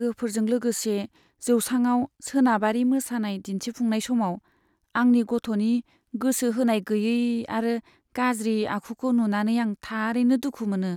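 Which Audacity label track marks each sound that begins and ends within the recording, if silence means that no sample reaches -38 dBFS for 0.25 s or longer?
1.430000	4.380000	sound
4.950000	5.810000	sound
6.140000	7.800000	sound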